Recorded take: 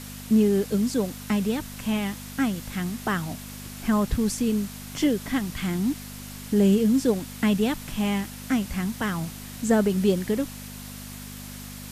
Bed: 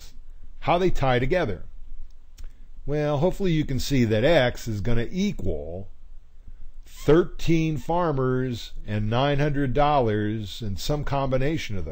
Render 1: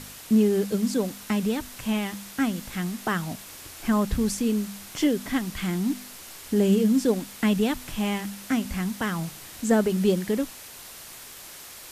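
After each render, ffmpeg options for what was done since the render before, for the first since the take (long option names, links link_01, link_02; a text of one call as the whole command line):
ffmpeg -i in.wav -af "bandreject=frequency=50:width_type=h:width=4,bandreject=frequency=100:width_type=h:width=4,bandreject=frequency=150:width_type=h:width=4,bandreject=frequency=200:width_type=h:width=4,bandreject=frequency=250:width_type=h:width=4" out.wav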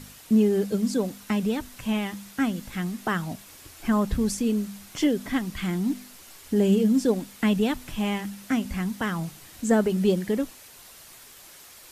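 ffmpeg -i in.wav -af "afftdn=noise_reduction=6:noise_floor=-43" out.wav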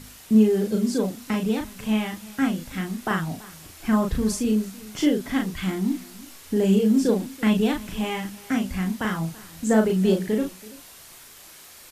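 ffmpeg -i in.wav -filter_complex "[0:a]asplit=2[link_01][link_02];[link_02]adelay=37,volume=-3.5dB[link_03];[link_01][link_03]amix=inputs=2:normalize=0,aecho=1:1:332:0.0944" out.wav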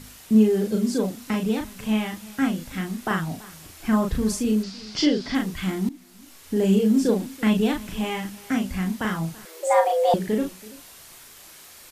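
ffmpeg -i in.wav -filter_complex "[0:a]asettb=1/sr,asplit=3[link_01][link_02][link_03];[link_01]atrim=end=4.634[link_04];[link_02]atrim=start=4.63:end=5.35,asetpts=PTS-STARTPTS,afade=type=in:duration=0.004:curve=qsin,afade=type=out:start_time=0.716:duration=0.004:curve=qsin,lowpass=frequency=4800:width_type=q:width=5.8[link_05];[link_03]atrim=start=5.346[link_06];[link_04][link_05]acrossfade=duration=0.004:curve1=hsin:curve2=qsin[link_07];[link_07][link_06]acrossfade=duration=0.004:curve1=qsin:curve2=hsin,asettb=1/sr,asplit=3[link_08][link_09][link_10];[link_08]atrim=end=9.454[link_11];[link_09]atrim=start=9.45:end=10.14,asetpts=PTS-STARTPTS,afade=type=in:duration=0.004:curve=qsin,afade=type=out:start_time=0.686:duration=0.004:curve=qsin,afreqshift=320[link_12];[link_10]atrim=start=10.136[link_13];[link_11][link_12]acrossfade=duration=0.004:curve1=hsin:curve2=qsin[link_14];[link_14][link_13]acrossfade=duration=0.004:curve1=qsin:curve2=hsin,asplit=2[link_15][link_16];[link_15]atrim=end=5.89,asetpts=PTS-STARTPTS,afade=type=out:start_time=5.886:duration=0.004:curve=hsin:silence=0.141254[link_17];[link_16]atrim=start=5.89,asetpts=PTS-STARTPTS,afade=type=in:duration=0.74:silence=0.141254[link_18];[link_17][link_18]concat=n=2:v=0:a=1" out.wav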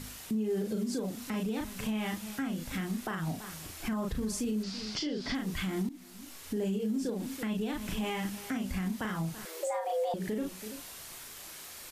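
ffmpeg -i in.wav -af "acompressor=threshold=-22dB:ratio=6,alimiter=level_in=1dB:limit=-24dB:level=0:latency=1:release=199,volume=-1dB" out.wav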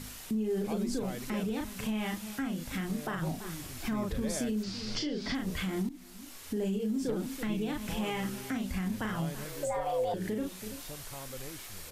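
ffmpeg -i in.wav -i bed.wav -filter_complex "[1:a]volume=-21dB[link_01];[0:a][link_01]amix=inputs=2:normalize=0" out.wav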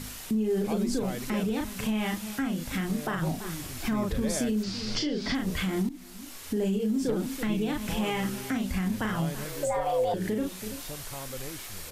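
ffmpeg -i in.wav -af "volume=4.5dB" out.wav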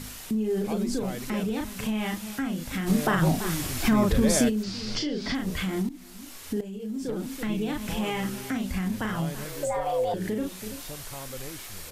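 ffmpeg -i in.wav -filter_complex "[0:a]asplit=3[link_01][link_02][link_03];[link_01]afade=type=out:start_time=2.86:duration=0.02[link_04];[link_02]acontrast=84,afade=type=in:start_time=2.86:duration=0.02,afade=type=out:start_time=4.48:duration=0.02[link_05];[link_03]afade=type=in:start_time=4.48:duration=0.02[link_06];[link_04][link_05][link_06]amix=inputs=3:normalize=0,asplit=2[link_07][link_08];[link_07]atrim=end=6.61,asetpts=PTS-STARTPTS,afade=type=out:start_time=6.606:duration=0.004:curve=hsin:silence=0.199526[link_09];[link_08]atrim=start=6.61,asetpts=PTS-STARTPTS,afade=type=in:duration=1.2:curve=qsin:silence=0.199526[link_10];[link_09][link_10]concat=n=2:v=0:a=1" out.wav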